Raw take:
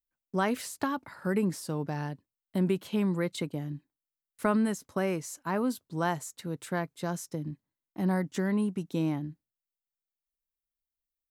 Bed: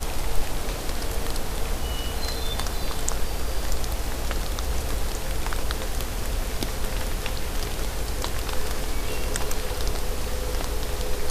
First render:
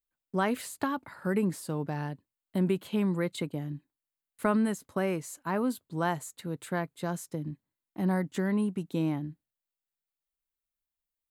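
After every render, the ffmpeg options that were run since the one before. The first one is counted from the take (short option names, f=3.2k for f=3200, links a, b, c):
-af "equalizer=f=5.6k:w=3.5:g=-8"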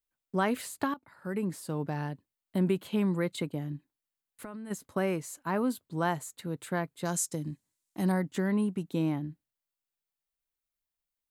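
-filter_complex "[0:a]asplit=3[a][b][c];[a]afade=t=out:st=3.76:d=0.02[d];[b]acompressor=threshold=-40dB:ratio=6:attack=3.2:release=140:knee=1:detection=peak,afade=t=in:st=3.76:d=0.02,afade=t=out:st=4.7:d=0.02[e];[c]afade=t=in:st=4.7:d=0.02[f];[d][e][f]amix=inputs=3:normalize=0,asettb=1/sr,asplit=3[g][h][i];[g]atrim=end=7.054[j];[h]atrim=start=7.05:end=8.12,asetpts=PTS-STARTPTS,afade=t=in:d=0.004:c=qsin,afade=t=out:st=1.066:d=0.004:c=qsin,equalizer=f=7.5k:t=o:w=1.6:g=15[k];[i]atrim=start=8.116[l];[j][k]acrossfade=d=0.004:c1=hsin:c2=qsin[m];[m][l]acrossfade=d=0.004:c1=qsin:c2=hsin,asplit=2[n][o];[n]atrim=end=0.94,asetpts=PTS-STARTPTS,afade=t=out:st=0.936:d=0.004:c=hsin:silence=0.158489[p];[o]atrim=start=0.94,asetpts=PTS-STARTPTS,afade=t=in:d=0.89:silence=0.158489[q];[p][q]concat=n=2:v=0:a=1"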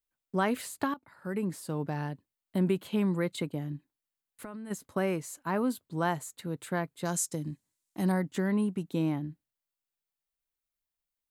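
-af anull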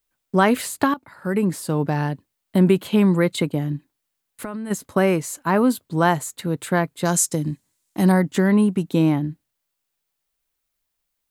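-af "volume=11.5dB"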